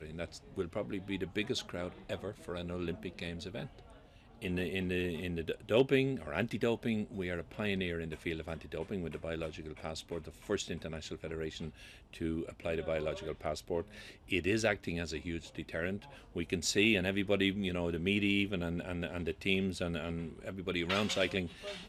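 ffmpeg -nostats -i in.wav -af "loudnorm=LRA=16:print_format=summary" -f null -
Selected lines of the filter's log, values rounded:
Input Integrated:    -35.8 LUFS
Input True Peak:     -15.3 dBTP
Input LRA:             6.6 LU
Input Threshold:     -46.0 LUFS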